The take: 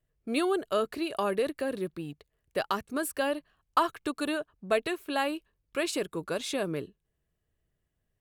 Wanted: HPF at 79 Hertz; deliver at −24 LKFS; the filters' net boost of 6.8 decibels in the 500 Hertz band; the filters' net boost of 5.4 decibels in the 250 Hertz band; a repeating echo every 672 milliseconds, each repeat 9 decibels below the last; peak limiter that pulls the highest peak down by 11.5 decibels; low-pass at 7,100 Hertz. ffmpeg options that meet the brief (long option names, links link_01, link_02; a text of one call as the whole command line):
ffmpeg -i in.wav -af "highpass=79,lowpass=7100,equalizer=frequency=250:width_type=o:gain=4,equalizer=frequency=500:width_type=o:gain=7.5,alimiter=limit=-19dB:level=0:latency=1,aecho=1:1:672|1344|2016|2688:0.355|0.124|0.0435|0.0152,volume=5.5dB" out.wav